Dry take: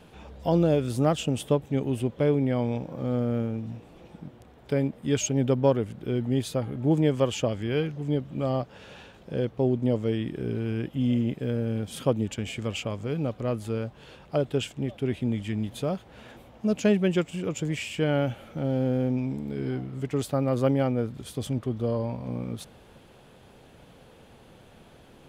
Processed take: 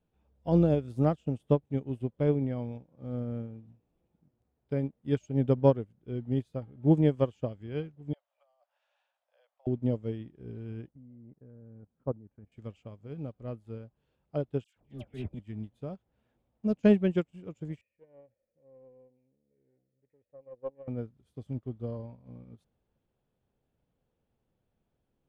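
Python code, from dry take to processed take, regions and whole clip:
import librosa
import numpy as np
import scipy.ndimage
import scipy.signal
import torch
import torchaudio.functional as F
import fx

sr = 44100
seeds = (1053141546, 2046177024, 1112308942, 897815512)

y = fx.chain(x, sr, fx.steep_highpass(hz=580.0, slope=72),
    fx.over_compress(threshold_db=-36.0, ratio=-0.5), at=(8.13, 9.67))
y = fx.chain(y, sr, fx.lowpass(hz=1600.0, slope=24),
    fx.level_steps(step_db=11), at=(10.89, 12.52))
y = fx.chain(y, sr, fx.transient(attack_db=-5, sustain_db=11),
    fx.dispersion(late='lows', ms=125.0, hz=1400.0), at=(14.64, 15.39))
y = fx.chain(y, sr, fx.formant_cascade(vowel='e'),
    fx.doppler_dist(depth_ms=0.2), at=(17.81, 20.88))
y = fx.tilt_eq(y, sr, slope=-2.0)
y = fx.upward_expand(y, sr, threshold_db=-34.0, expansion=2.5)
y = y * 10.0 ** (-2.0 / 20.0)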